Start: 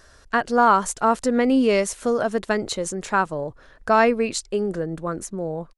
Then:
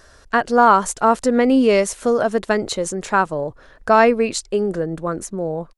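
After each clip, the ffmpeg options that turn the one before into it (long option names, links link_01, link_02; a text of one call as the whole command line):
ffmpeg -i in.wav -af "equalizer=frequency=570:width_type=o:width=1.9:gain=2,volume=2.5dB" out.wav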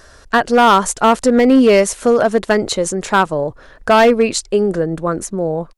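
ffmpeg -i in.wav -af "asoftclip=type=hard:threshold=-10dB,volume=5dB" out.wav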